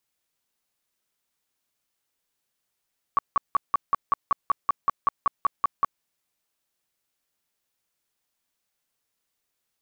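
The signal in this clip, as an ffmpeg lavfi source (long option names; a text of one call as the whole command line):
ffmpeg -f lavfi -i "aevalsrc='0.158*sin(2*PI*1130*mod(t,0.19))*lt(mod(t,0.19),19/1130)':duration=2.85:sample_rate=44100" out.wav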